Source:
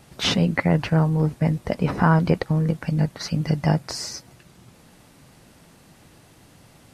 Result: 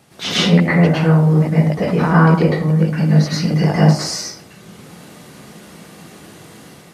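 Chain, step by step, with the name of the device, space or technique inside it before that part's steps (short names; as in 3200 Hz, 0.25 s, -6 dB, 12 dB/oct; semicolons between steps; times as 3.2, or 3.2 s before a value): far laptop microphone (reverb RT60 0.50 s, pre-delay 0.101 s, DRR -7.5 dB; HPF 120 Hz 12 dB/oct; AGC gain up to 4.5 dB)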